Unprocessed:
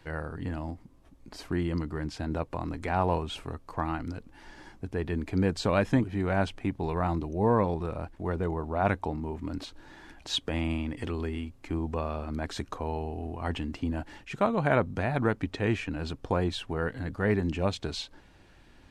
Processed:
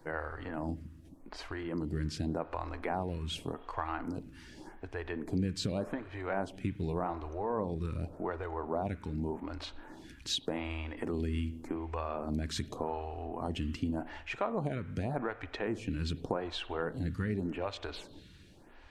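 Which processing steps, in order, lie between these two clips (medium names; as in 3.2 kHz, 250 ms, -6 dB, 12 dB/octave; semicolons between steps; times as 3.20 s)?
compression, threshold -31 dBFS, peak gain reduction 11.5 dB; reverberation RT60 1.5 s, pre-delay 37 ms, DRR 13.5 dB; lamp-driven phase shifter 0.86 Hz; trim +3 dB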